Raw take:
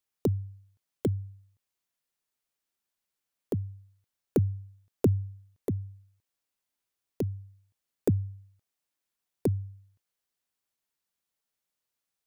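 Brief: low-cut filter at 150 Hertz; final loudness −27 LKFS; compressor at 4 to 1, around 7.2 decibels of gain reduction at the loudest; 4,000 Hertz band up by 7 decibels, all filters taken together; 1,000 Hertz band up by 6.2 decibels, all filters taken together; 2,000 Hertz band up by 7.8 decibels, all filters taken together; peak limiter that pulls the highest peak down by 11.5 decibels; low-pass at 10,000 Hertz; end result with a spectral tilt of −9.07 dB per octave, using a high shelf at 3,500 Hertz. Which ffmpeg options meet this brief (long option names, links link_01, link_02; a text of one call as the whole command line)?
ffmpeg -i in.wav -af "highpass=150,lowpass=10000,equalizer=frequency=1000:width_type=o:gain=7,equalizer=frequency=2000:width_type=o:gain=5.5,highshelf=frequency=3500:gain=5,equalizer=frequency=4000:width_type=o:gain=3.5,acompressor=threshold=-28dB:ratio=4,volume=18dB,alimiter=limit=-7dB:level=0:latency=1" out.wav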